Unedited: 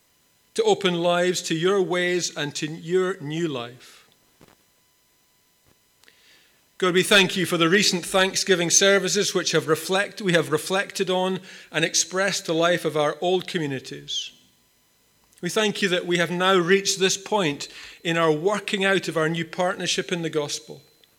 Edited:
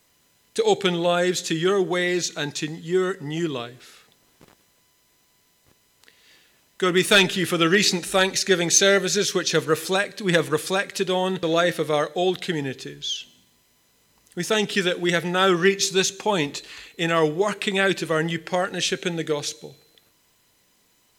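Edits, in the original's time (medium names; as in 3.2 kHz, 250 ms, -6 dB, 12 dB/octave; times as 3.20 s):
11.43–12.49 s: delete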